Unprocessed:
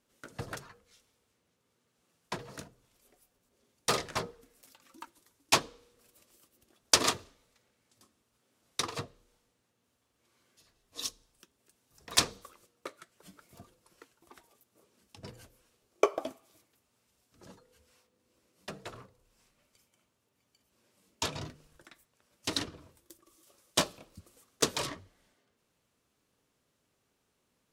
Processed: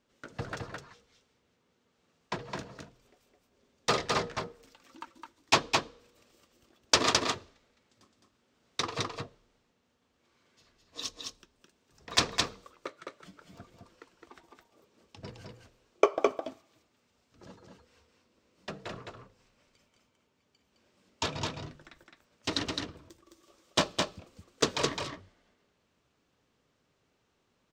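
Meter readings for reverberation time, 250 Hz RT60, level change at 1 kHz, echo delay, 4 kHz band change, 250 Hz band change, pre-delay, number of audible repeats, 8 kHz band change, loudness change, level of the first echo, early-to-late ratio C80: no reverb audible, no reverb audible, +4.0 dB, 212 ms, +2.0 dB, +4.0 dB, no reverb audible, 1, −2.0 dB, +1.0 dB, −3.5 dB, no reverb audible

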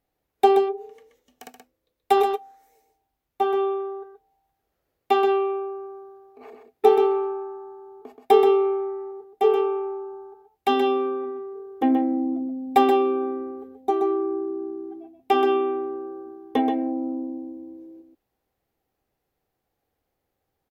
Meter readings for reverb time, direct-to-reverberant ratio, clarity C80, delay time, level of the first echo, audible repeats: no reverb audible, no reverb audible, no reverb audible, 128 ms, −6.5 dB, 1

